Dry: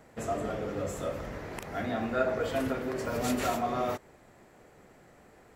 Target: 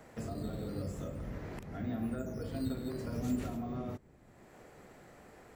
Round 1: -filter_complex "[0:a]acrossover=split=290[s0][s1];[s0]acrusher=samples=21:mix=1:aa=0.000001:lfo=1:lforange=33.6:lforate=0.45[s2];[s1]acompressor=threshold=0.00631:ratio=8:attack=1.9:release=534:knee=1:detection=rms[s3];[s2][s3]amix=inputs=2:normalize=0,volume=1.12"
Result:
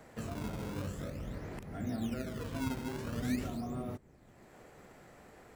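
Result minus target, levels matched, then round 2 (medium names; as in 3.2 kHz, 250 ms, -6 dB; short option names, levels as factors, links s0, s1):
decimation with a swept rate: distortion +12 dB
-filter_complex "[0:a]acrossover=split=290[s0][s1];[s0]acrusher=samples=6:mix=1:aa=0.000001:lfo=1:lforange=9.6:lforate=0.45[s2];[s1]acompressor=threshold=0.00631:ratio=8:attack=1.9:release=534:knee=1:detection=rms[s3];[s2][s3]amix=inputs=2:normalize=0,volume=1.12"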